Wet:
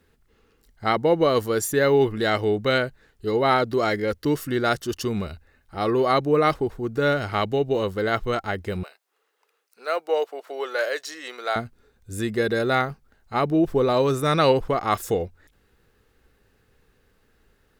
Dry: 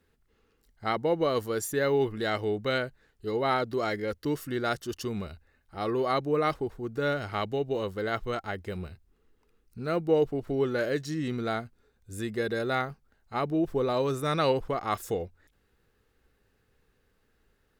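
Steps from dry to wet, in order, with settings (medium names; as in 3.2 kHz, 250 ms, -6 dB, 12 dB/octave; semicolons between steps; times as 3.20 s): 8.83–11.56 s: high-pass 550 Hz 24 dB/octave; trim +7 dB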